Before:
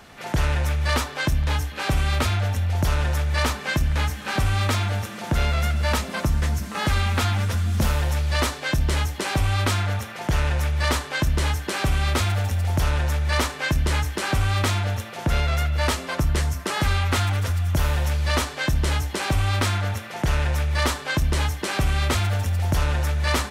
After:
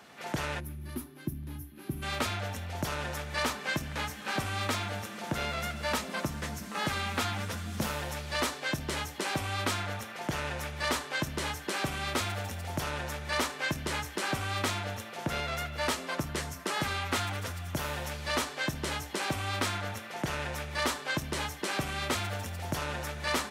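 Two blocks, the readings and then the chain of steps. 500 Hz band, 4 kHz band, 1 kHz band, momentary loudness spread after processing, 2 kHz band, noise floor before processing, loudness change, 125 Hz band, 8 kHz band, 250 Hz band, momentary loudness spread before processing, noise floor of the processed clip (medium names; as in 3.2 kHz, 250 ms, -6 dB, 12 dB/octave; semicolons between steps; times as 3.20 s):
-6.5 dB, -6.5 dB, -6.5 dB, 6 LU, -6.5 dB, -36 dBFS, -10.0 dB, -16.0 dB, -6.0 dB, -7.0 dB, 3 LU, -45 dBFS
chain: high-pass 160 Hz 12 dB/octave; time-frequency box 0.60–2.03 s, 390–9600 Hz -20 dB; trim -6 dB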